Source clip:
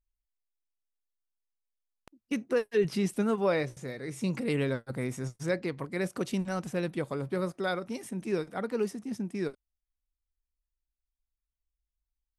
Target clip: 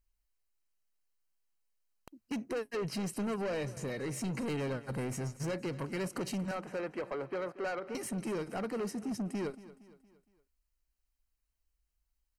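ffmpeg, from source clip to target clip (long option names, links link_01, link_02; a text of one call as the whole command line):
ffmpeg -i in.wav -filter_complex "[0:a]asettb=1/sr,asplit=3[link_01][link_02][link_03];[link_01]atrim=end=3.274[link_04];[link_02]atrim=start=3.27:end=4.44,asetpts=PTS-STARTPTS,afade=type=in:duration=0.004:curve=qsin,afade=type=out:start_time=1.166:duration=0.004:curve=qsin,highpass=frequency=56:width=0.5412,highpass=frequency=56:width=1.3066[link_05];[link_03]atrim=start=4.436[link_06];[link_04][link_05]acrossfade=duration=0.004:curve1=hsin:curve2=qsin[link_07];[link_07][link_06]acrossfade=duration=0.004:curve1=qsin:curve2=hsin,asettb=1/sr,asplit=3[link_08][link_09][link_10];[link_08]atrim=end=6.514[link_11];[link_09]atrim=start=6.51:end=7.95,asetpts=PTS-STARTPTS,afade=type=in:duration=0.004:curve=qsin,afade=type=out:start_time=1.436:duration=0.004:curve=qsin,acrossover=split=360 2500:gain=0.126 1 0.0891[link_12][link_13][link_14];[link_12][link_13][link_14]amix=inputs=3:normalize=0[link_15];[link_10]atrim=start=7.946[link_16];[link_11][link_15]acrossfade=duration=0.004:curve1=hsin:curve2=qsin[link_17];[link_17][link_16]acrossfade=duration=0.004:curve1=qsin:curve2=hsin,acompressor=threshold=-35dB:ratio=2,asoftclip=type=tanh:threshold=-37.5dB,asuperstop=centerf=3500:order=20:qfactor=7.6,aecho=1:1:232|464|696|928:0.133|0.0627|0.0295|0.0138,volume=5.5dB" out.wav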